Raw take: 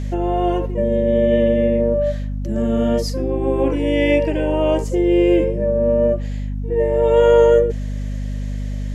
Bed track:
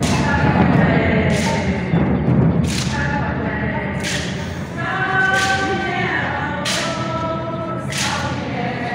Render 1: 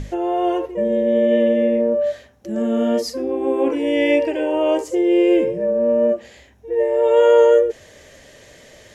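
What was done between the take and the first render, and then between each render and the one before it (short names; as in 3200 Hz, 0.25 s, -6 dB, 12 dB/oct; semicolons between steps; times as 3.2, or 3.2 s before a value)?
notches 50/100/150/200/250/300 Hz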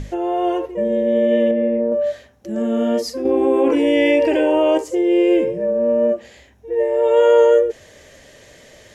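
1.51–1.92 air absorption 500 m; 3.25–4.78 fast leveller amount 70%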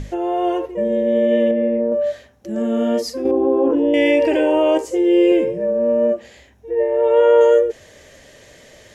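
3.31–3.94 running mean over 20 samples; 4.82–5.32 doubler 15 ms -5 dB; 6.71–7.41 tone controls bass +2 dB, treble -14 dB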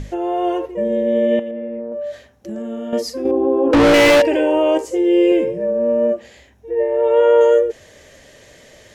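1.39–2.93 compressor 10:1, threshold -23 dBFS; 3.73–4.22 overdrive pedal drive 38 dB, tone 3400 Hz, clips at -5 dBFS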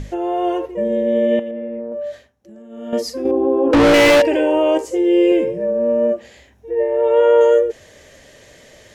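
2.08–2.94 dip -13 dB, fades 0.25 s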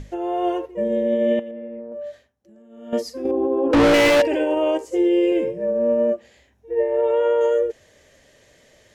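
limiter -10 dBFS, peak gain reduction 6.5 dB; upward expander 1.5:1, over -31 dBFS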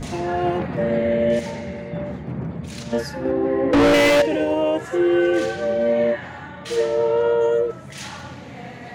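add bed track -14 dB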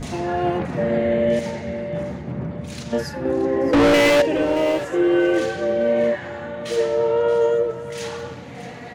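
feedback echo 0.625 s, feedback 23%, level -14 dB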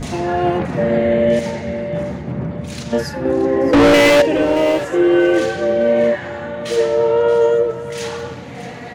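gain +4.5 dB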